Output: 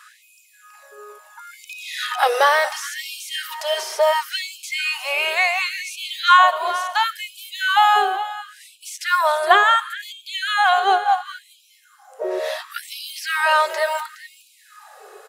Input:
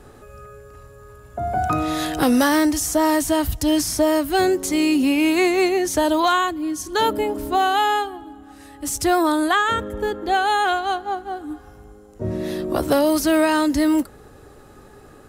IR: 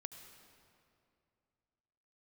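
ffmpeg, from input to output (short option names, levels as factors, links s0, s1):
-filter_complex "[0:a]acrossover=split=3900[s0][s1];[s1]acompressor=threshold=0.00708:ratio=4:attack=1:release=60[s2];[s0][s2]amix=inputs=2:normalize=0,aphaser=in_gain=1:out_gain=1:delay=2.9:decay=0.34:speed=0.16:type=sinusoidal,aecho=1:1:417:0.2,asplit=2[s3][s4];[1:a]atrim=start_sample=2205[s5];[s4][s5]afir=irnorm=-1:irlink=0,volume=0.841[s6];[s3][s6]amix=inputs=2:normalize=0,afftfilt=real='re*gte(b*sr/1024,370*pow(2300/370,0.5+0.5*sin(2*PI*0.71*pts/sr)))':imag='im*gte(b*sr/1024,370*pow(2300/370,0.5+0.5*sin(2*PI*0.71*pts/sr)))':win_size=1024:overlap=0.75,volume=1.26"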